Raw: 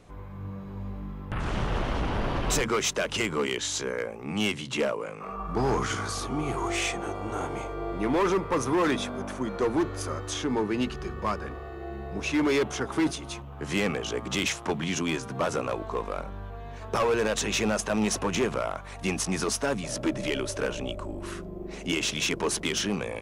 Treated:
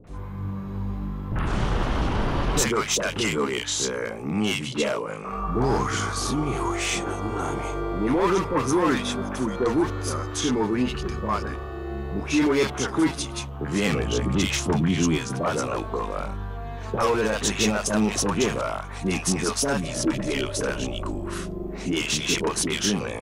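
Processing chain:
0:13.92–0:15.18: low-shelf EQ 230 Hz +10.5 dB
in parallel at +1.5 dB: brickwall limiter −25 dBFS, peak gain reduction 10.5 dB
on the sum: three-band delay without the direct sound lows, mids, highs 40/70 ms, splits 580/2,300 Hz

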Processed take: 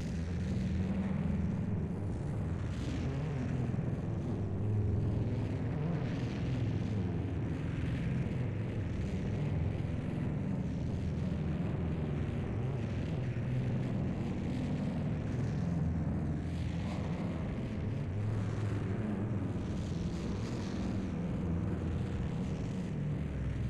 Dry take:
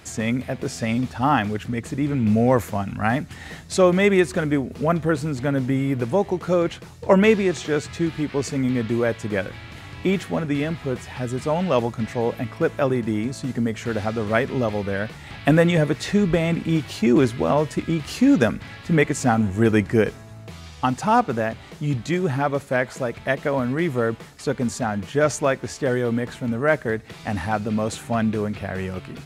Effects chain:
spectrum smeared in time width 507 ms
high-pass filter 120 Hz 12 dB per octave
bass and treble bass +13 dB, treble 0 dB
notch filter 7,000 Hz, Q 5.1
harmonic and percussive parts rebalanced percussive +9 dB
flat-topped bell 1,000 Hz −10 dB 2.3 octaves
downward compressor 4 to 1, threshold −26 dBFS, peak gain reduction 14 dB
tape wow and flutter 120 cents
time stretch by phase vocoder 0.6×
soft clipping −35 dBFS, distortion −8 dB
spring reverb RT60 3.6 s, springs 35 ms, chirp 20 ms, DRR 1.5 dB
wrong playback speed 45 rpm record played at 33 rpm

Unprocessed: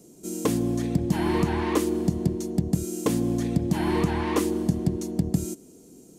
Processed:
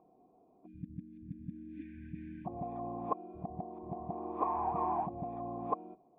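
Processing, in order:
played backwards from end to start
time-frequency box erased 0:00.66–0:02.46, 330–1,500 Hz
formant resonators in series a
level +7.5 dB

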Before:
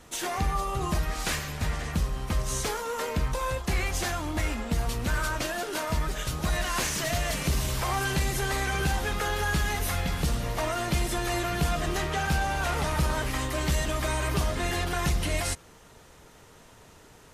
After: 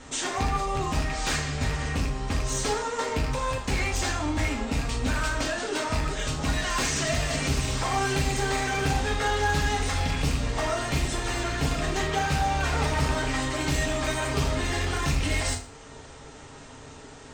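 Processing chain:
loose part that buzzes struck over −24 dBFS, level −22 dBFS
Butterworth low-pass 8,900 Hz 96 dB per octave
in parallel at +1 dB: downward compressor 6 to 1, threshold −40 dBFS, peak gain reduction 17.5 dB
on the sum: wave folding −19.5 dBFS
convolution reverb RT60 0.45 s, pre-delay 4 ms, DRR 0 dB
level −2 dB

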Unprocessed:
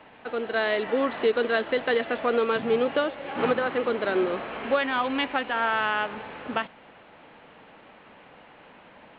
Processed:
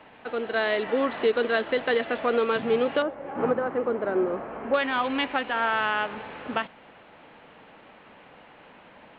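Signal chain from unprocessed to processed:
0:03.02–0:04.74: low-pass filter 1,200 Hz 12 dB per octave

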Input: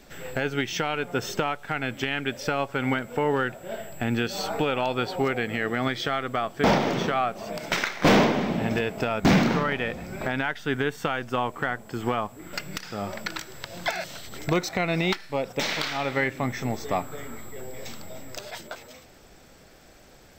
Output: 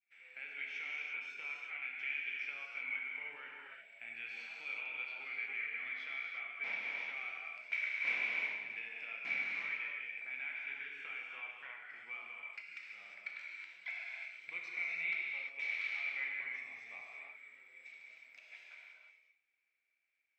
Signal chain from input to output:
downward expander −41 dBFS
resonant band-pass 2,300 Hz, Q 17
reverb whose tail is shaped and stops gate 380 ms flat, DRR −3 dB
level −2.5 dB

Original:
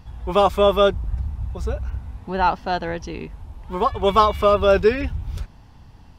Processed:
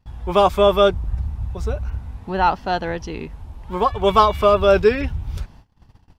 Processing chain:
noise gate −43 dBFS, range −23 dB
level +1.5 dB

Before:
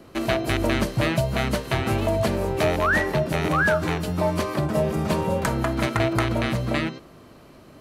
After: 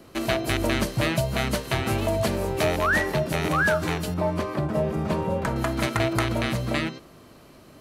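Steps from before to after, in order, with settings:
high-shelf EQ 3,500 Hz +5.5 dB, from 0:04.14 −8.5 dB, from 0:05.56 +5.5 dB
level −2 dB

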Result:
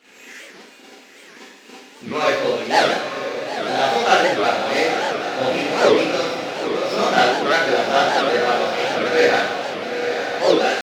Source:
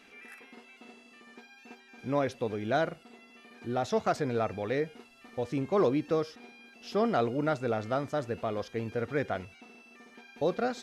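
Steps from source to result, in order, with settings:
running median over 15 samples
meter weighting curve D
harmonic and percussive parts rebalanced harmonic −14 dB
pitch shifter +1 semitone
feedback delay with all-pass diffusion 940 ms, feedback 54%, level −6.5 dB
four-comb reverb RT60 0.77 s, combs from 31 ms, DRR −9.5 dB
wow of a warped record 78 rpm, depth 250 cents
level +6 dB

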